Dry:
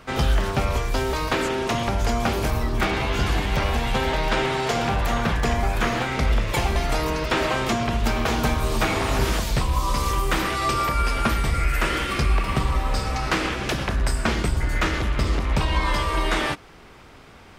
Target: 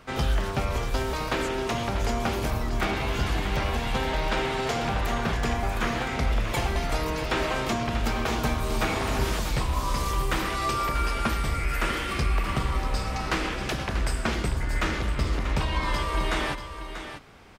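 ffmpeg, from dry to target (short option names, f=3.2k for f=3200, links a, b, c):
-af "aecho=1:1:638:0.316,volume=-4.5dB"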